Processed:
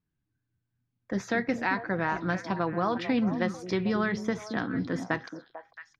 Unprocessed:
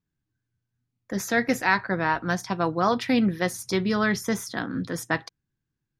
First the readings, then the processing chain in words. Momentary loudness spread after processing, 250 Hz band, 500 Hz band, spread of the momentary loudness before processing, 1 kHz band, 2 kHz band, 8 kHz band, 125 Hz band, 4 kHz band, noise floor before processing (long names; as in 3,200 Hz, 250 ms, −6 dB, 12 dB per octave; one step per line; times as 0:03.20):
8 LU, −3.0 dB, −3.5 dB, 8 LU, −5.0 dB, −5.5 dB, −14.0 dB, −3.0 dB, −8.0 dB, −83 dBFS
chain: downward compressor 3 to 1, threshold −24 dBFS, peak gain reduction 7 dB
high-frequency loss of the air 170 metres
on a send: echo through a band-pass that steps 223 ms, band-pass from 270 Hz, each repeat 1.4 octaves, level −6 dB